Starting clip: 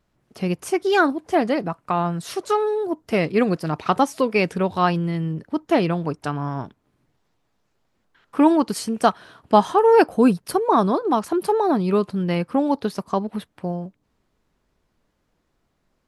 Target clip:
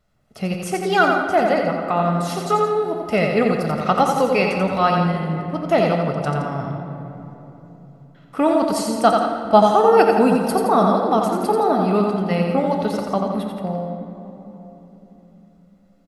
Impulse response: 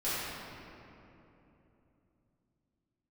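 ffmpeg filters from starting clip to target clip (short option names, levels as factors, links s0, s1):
-filter_complex "[0:a]aecho=1:1:1.5:0.48,aecho=1:1:87.46|169.1:0.562|0.282,asplit=2[s0][s1];[1:a]atrim=start_sample=2205,asetrate=37044,aresample=44100[s2];[s1][s2]afir=irnorm=-1:irlink=0,volume=0.2[s3];[s0][s3]amix=inputs=2:normalize=0,volume=0.891"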